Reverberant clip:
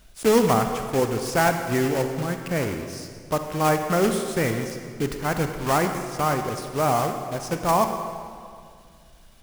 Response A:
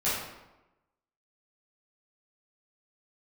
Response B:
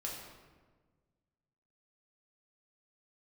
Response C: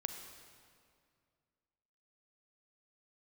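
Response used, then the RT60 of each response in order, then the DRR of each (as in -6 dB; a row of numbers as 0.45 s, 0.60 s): C; 1.0 s, 1.4 s, 2.2 s; -12.0 dB, -3.5 dB, 6.0 dB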